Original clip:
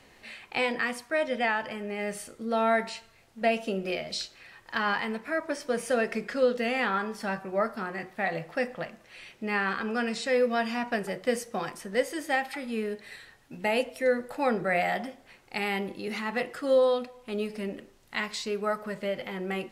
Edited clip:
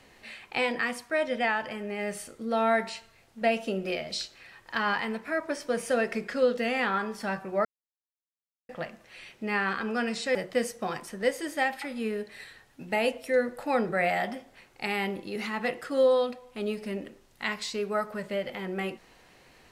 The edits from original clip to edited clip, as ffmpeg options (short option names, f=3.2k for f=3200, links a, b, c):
-filter_complex "[0:a]asplit=4[a][b][c][d];[a]atrim=end=7.65,asetpts=PTS-STARTPTS,afade=t=out:st=7.646:d=0.004:c=hsin[e];[b]atrim=start=7.65:end=8.69,asetpts=PTS-STARTPTS,volume=0[f];[c]atrim=start=8.69:end=10.352,asetpts=PTS-STARTPTS,afade=t=in:d=0.004:c=hsin[g];[d]atrim=start=11.068[h];[e][f][g]concat=n=3:v=0:a=1[i];[i][h]acrossfade=d=0.004:c1=hsin:c2=hsin"